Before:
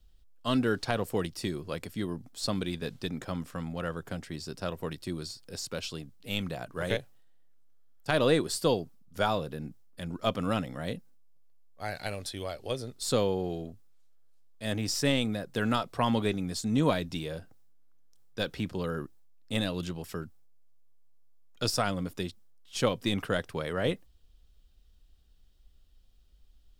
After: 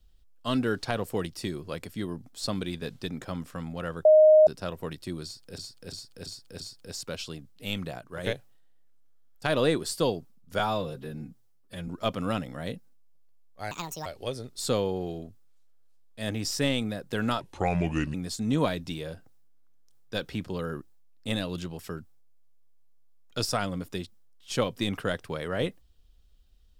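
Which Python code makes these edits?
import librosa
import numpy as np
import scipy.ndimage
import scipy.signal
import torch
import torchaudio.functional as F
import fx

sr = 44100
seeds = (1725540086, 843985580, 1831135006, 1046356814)

y = fx.edit(x, sr, fx.bleep(start_s=4.05, length_s=0.42, hz=620.0, db=-12.5),
    fx.repeat(start_s=5.24, length_s=0.34, count=5),
    fx.clip_gain(start_s=6.62, length_s=0.26, db=-4.0),
    fx.stretch_span(start_s=9.23, length_s=0.86, factor=1.5),
    fx.speed_span(start_s=11.92, length_s=0.57, speed=1.64),
    fx.speed_span(start_s=15.84, length_s=0.55, speed=0.75), tone=tone)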